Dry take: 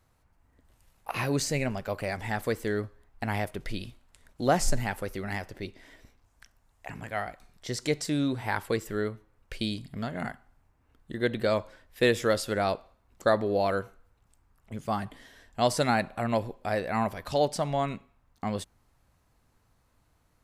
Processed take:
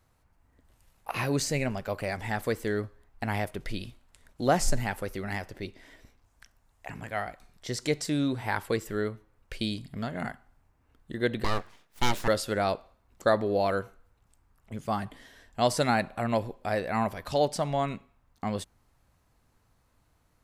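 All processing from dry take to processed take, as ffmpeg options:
-filter_complex "[0:a]asettb=1/sr,asplit=3[a][b][c];[a]atrim=end=11.444[d];[b]atrim=start=11.44:end=12.28,asetpts=PTS-STARTPTS,afade=t=in:d=0.004:c=qsin,afade=t=out:st=0.836:d=0.004:c=qsin,highpass=f=83:w=0.5412,highpass=f=83:w=1.3066,aeval=exprs='abs(val(0))':c=same[e];[c]atrim=start=12.276[f];[d][e]acrossfade=d=0.004:c1=hsin:c2=qsin[g];[g][f]acrossfade=d=0.004:c1=qsin:c2=hsin"

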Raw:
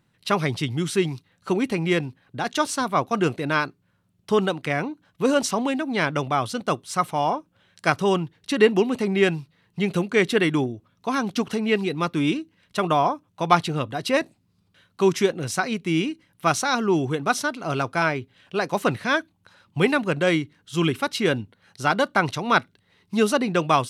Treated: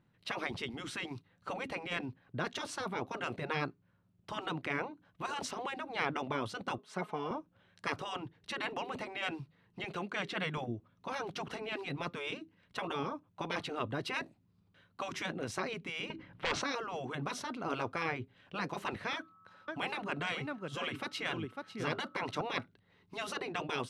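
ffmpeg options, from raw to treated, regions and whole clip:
-filter_complex "[0:a]asettb=1/sr,asplit=3[a][b][c];[a]atrim=end=6.784[d];[b]atrim=start=6.78:end=7.31,asetpts=PTS-STARTPTS,afade=t=in:d=0.004:c=qsin,afade=t=out:st=0.526:d=0.004:c=qsin,highpass=280,highshelf=f=3.4k:g=-10.5,aecho=1:1:4.7:0.61,atrim=end_sample=23373[e];[c]atrim=start=7.306[f];[d][e]acrossfade=d=0.004:c1=hsin:c2=qsin[g];[g][f]acrossfade=d=0.004:c1=qsin:c2=hsin,asettb=1/sr,asplit=3[h][i][j];[h]atrim=end=9.844[k];[i]atrim=start=9.84:end=10.58,asetpts=PTS-STARTPTS,afade=t=in:d=0.004:c=qsin,afade=t=out:st=0.736:d=0.004:c=qsin,acrossover=split=7200[l][m];[m]acompressor=threshold=-51dB:ratio=4:attack=1:release=60[n];[l][n]amix=inputs=2:normalize=0,lowshelf=f=360:g=-8.5[o];[j]atrim=start=10.576[p];[k][o]acrossfade=d=0.004:c1=hsin:c2=qsin[q];[q][p]acrossfade=d=0.004:c1=qsin:c2=hsin,asettb=1/sr,asplit=3[r][s][t];[r]atrim=end=16.104[u];[s]atrim=start=16.1:end=16.62,asetpts=PTS-STARTPTS,afade=t=in:d=0.004:c=qsin,afade=t=out:st=0.516:d=0.004:c=qsin,lowpass=3.3k,acompressor=threshold=-22dB:ratio=3:attack=3.2:release=140:knee=1:detection=peak,aeval=exprs='0.224*sin(PI/2*2.82*val(0)/0.224)':c=same[v];[t]atrim=start=16.616[w];[u][v]acrossfade=d=0.004:c1=hsin:c2=qsin[x];[x][w]acrossfade=d=0.004:c1=qsin:c2=hsin,asettb=1/sr,asplit=3[y][z][aa];[y]atrim=end=19.134[ab];[z]atrim=start=19.13:end=22.41,asetpts=PTS-STARTPTS,afade=t=in:d=0.004:c=qsin,afade=t=out:st=3.276:d=0.004:c=qsin,highpass=120,aeval=exprs='val(0)+0.0562*sin(2*PI*1300*n/s)':c=same,aecho=1:1:549:0.211,atrim=end_sample=144648[ac];[aa]atrim=start=22.406[ad];[ab][ac]acrossfade=d=0.004:c1=hsin:c2=qsin[ae];[ae][ad]acrossfade=d=0.004:c1=qsin:c2=hsin,afftfilt=real='re*lt(hypot(re,im),0.251)':imag='im*lt(hypot(re,im),0.251)':win_size=1024:overlap=0.75,lowpass=f=1.8k:p=1,volume=-4dB"

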